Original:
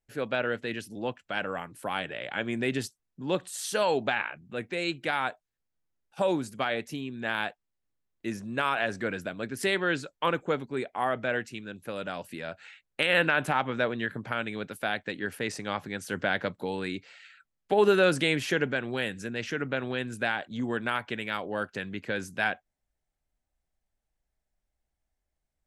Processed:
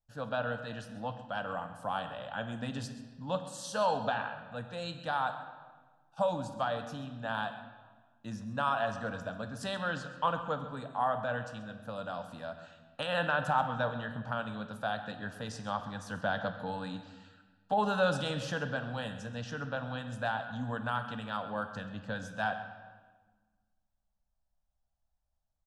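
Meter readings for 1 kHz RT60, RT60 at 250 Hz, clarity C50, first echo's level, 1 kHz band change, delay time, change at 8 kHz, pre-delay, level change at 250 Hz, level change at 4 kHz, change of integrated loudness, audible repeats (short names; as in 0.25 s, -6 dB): 1.3 s, 1.9 s, 9.0 dB, -15.5 dB, -0.5 dB, 0.132 s, -8.0 dB, 4 ms, -6.5 dB, -7.0 dB, -5.5 dB, 1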